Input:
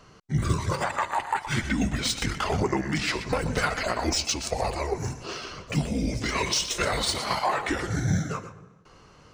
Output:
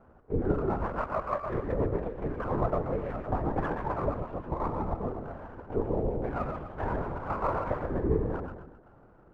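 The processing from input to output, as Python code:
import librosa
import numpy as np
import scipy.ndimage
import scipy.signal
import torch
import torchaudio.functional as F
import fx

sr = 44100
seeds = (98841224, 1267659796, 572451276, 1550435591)

y = scipy.signal.sosfilt(scipy.signal.butter(4, 1100.0, 'lowpass', fs=sr, output='sos'), x)
y = y * np.sin(2.0 * np.pi * 270.0 * np.arange(len(y)) / sr)
y = fx.echo_feedback(y, sr, ms=129, feedback_pct=41, wet_db=-6.0)
y = fx.lpc_vocoder(y, sr, seeds[0], excitation='whisper', order=10)
y = fx.running_max(y, sr, window=3)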